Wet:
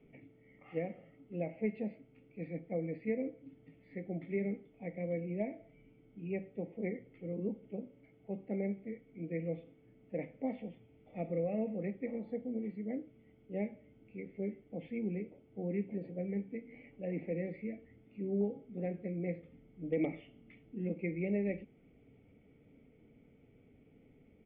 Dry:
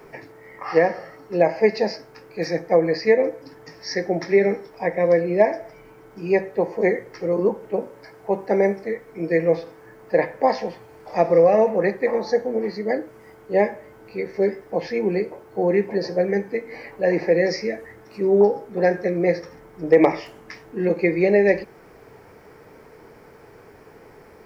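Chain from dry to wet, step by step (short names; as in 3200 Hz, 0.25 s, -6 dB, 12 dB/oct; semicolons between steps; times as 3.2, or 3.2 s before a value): vocal tract filter i; comb 1.5 ms, depth 60%; gain -2 dB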